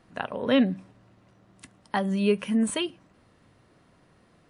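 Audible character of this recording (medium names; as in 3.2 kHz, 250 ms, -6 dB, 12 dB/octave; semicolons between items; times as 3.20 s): noise floor -61 dBFS; spectral tilt -5.0 dB/octave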